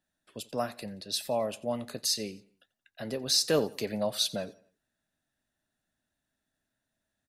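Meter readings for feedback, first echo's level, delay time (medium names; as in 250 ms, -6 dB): 41%, -21.0 dB, 88 ms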